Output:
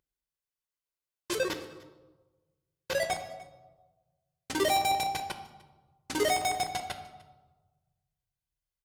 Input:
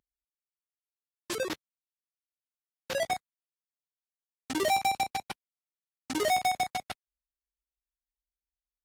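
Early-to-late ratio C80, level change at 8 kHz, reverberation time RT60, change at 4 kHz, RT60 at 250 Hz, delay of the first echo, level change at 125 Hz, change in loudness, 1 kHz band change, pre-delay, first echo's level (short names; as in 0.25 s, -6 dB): 12.0 dB, +2.0 dB, 1.3 s, +2.0 dB, 1.4 s, 0.299 s, +3.5 dB, 0.0 dB, -0.5 dB, 3 ms, -23.0 dB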